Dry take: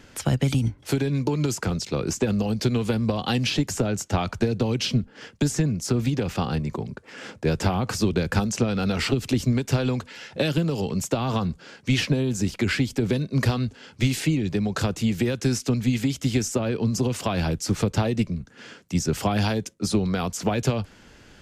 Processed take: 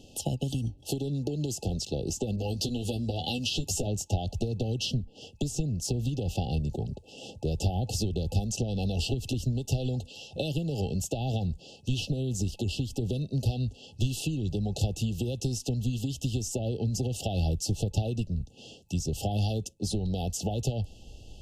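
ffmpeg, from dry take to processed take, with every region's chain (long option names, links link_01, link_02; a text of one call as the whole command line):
ffmpeg -i in.wav -filter_complex "[0:a]asettb=1/sr,asplit=3[link_01][link_02][link_03];[link_01]atrim=end=2.364[link_04];[link_02]atrim=start=2.36:end=3.87,asetpts=PTS-STARTPTS,afade=type=in:duration=0.004:curve=qsin,afade=type=out:start_time=1.506:duration=0.004:curve=qsin,acompressor=threshold=-28dB:ratio=1.5:attack=3.2:release=140:knee=1:detection=peak,asplit=2[link_05][link_06];[link_06]adelay=12,volume=-5dB[link_07];[link_05][link_07]amix=inputs=2:normalize=0,atrim=end_sample=66591,adynamicequalizer=threshold=0.00631:dfrequency=1800:dqfactor=0.7:tfrequency=1800:tqfactor=0.7:attack=5:release=100:ratio=0.375:range=2:mode=boostabove:tftype=highshelf[link_08];[link_03]atrim=start=3.866[link_09];[link_04][link_08]acrossfade=duration=0.004:curve1=hsin:curve2=qsin[link_10];[link_10][link_09]acrossfade=duration=0.004:curve1=qsin:curve2=hsin,acompressor=threshold=-25dB:ratio=6,asubboost=boost=4:cutoff=97,afftfilt=real='re*(1-between(b*sr/4096,860,2600))':imag='im*(1-between(b*sr/4096,860,2600))':win_size=4096:overlap=0.75,volume=-1.5dB" out.wav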